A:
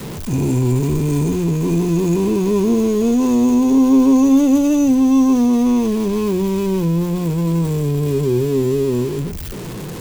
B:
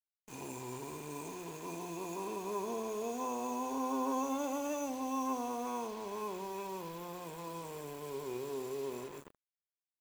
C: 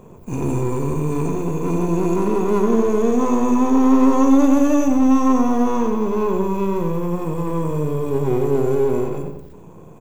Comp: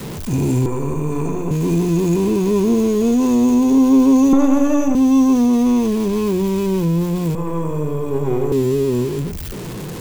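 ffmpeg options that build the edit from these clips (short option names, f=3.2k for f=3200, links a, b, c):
-filter_complex "[2:a]asplit=3[a][b][c];[0:a]asplit=4[d][e][f][g];[d]atrim=end=0.662[h];[a]atrim=start=0.658:end=1.512[i];[e]atrim=start=1.508:end=4.332[j];[b]atrim=start=4.328:end=4.952[k];[f]atrim=start=4.948:end=7.352[l];[c]atrim=start=7.348:end=8.522[m];[g]atrim=start=8.518[n];[h][i]acrossfade=d=0.004:c1=hsin:c2=hsin[o];[o][j]acrossfade=d=0.004:c1=hsin:c2=hsin[p];[p][k]acrossfade=d=0.004:c1=hsin:c2=hsin[q];[q][l]acrossfade=d=0.004:c1=hsin:c2=hsin[r];[r][m]acrossfade=d=0.004:c1=hsin:c2=hsin[s];[s][n]acrossfade=d=0.004:c1=hsin:c2=hsin"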